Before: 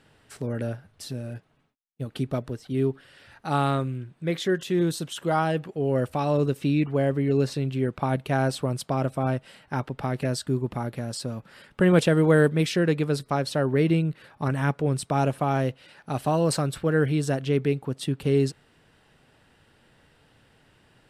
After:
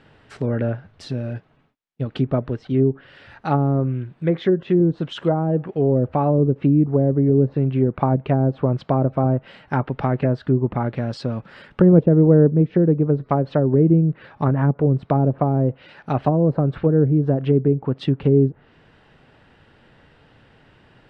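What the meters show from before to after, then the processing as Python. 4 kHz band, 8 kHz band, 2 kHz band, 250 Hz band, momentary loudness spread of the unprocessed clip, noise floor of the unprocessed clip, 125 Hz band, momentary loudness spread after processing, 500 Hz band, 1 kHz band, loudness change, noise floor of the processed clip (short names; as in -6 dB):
n/a, under -15 dB, -5.5 dB, +7.0 dB, 11 LU, -62 dBFS, +7.5 dB, 11 LU, +5.0 dB, +2.5 dB, +6.0 dB, -55 dBFS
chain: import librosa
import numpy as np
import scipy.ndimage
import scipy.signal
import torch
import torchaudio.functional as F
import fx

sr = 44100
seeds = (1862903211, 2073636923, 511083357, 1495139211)

y = fx.env_lowpass_down(x, sr, base_hz=450.0, full_db=-19.5)
y = scipy.signal.sosfilt(scipy.signal.bessel(2, 3000.0, 'lowpass', norm='mag', fs=sr, output='sos'), y)
y = F.gain(torch.from_numpy(y), 7.5).numpy()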